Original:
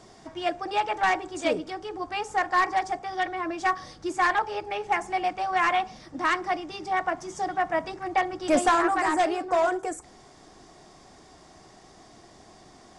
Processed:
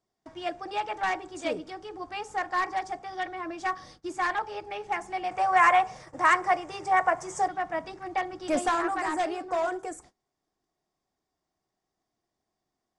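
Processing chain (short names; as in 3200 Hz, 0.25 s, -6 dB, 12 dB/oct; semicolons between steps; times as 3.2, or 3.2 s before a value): gate -46 dBFS, range -27 dB; 5.31–7.48 ten-band EQ 125 Hz +9 dB, 250 Hz -9 dB, 500 Hz +10 dB, 1000 Hz +7 dB, 2000 Hz +7 dB, 4000 Hz -5 dB, 8000 Hz +12 dB; gain -5 dB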